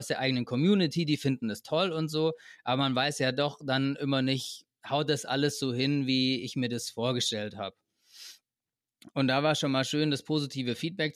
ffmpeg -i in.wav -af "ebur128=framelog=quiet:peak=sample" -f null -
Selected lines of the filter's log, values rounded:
Integrated loudness:
  I:         -29.0 LUFS
  Threshold: -39.5 LUFS
Loudness range:
  LRA:         3.2 LU
  Threshold: -49.9 LUFS
  LRA low:   -31.8 LUFS
  LRA high:  -28.6 LUFS
Sample peak:
  Peak:      -14.2 dBFS